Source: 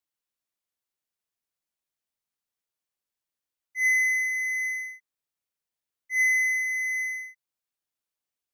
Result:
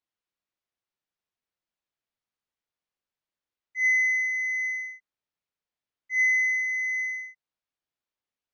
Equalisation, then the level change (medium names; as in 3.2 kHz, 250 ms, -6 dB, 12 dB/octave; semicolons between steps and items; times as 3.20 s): distance through air 130 m; +1.5 dB